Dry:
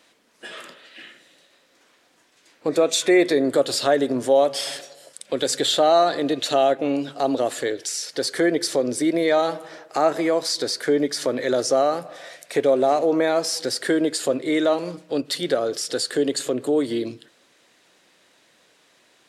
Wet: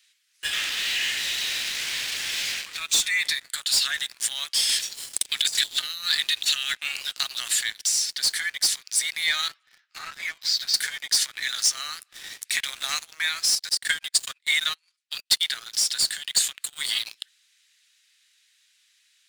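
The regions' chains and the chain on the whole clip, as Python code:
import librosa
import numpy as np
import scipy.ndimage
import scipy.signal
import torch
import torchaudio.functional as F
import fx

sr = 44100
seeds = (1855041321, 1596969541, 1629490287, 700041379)

y = fx.chain(x, sr, fx.crossing_spikes(level_db=-18.0),
    fx.lowpass(hz=2400.0, slope=12), at=(0.53, 2.78))
y = fx.chain(y, sr, fx.highpass(hz=1500.0, slope=12),
    fx.over_compress(threshold_db=-32.0, ratio=-0.5), at=(4.69, 6.79))
y = fx.chain(y, sr, fx.air_absorb(metres=140.0),
    fx.ensemble(), at=(9.48, 10.74))
y = fx.chain(y, sr, fx.transient(attack_db=6, sustain_db=-12),
    fx.upward_expand(threshold_db=-31.0, expansion=1.5), at=(13.55, 15.41))
y = scipy.signal.sosfilt(scipy.signal.bessel(6, 2700.0, 'highpass', norm='mag', fs=sr, output='sos'), y)
y = fx.leveller(y, sr, passes=3)
y = fx.rider(y, sr, range_db=5, speed_s=0.5)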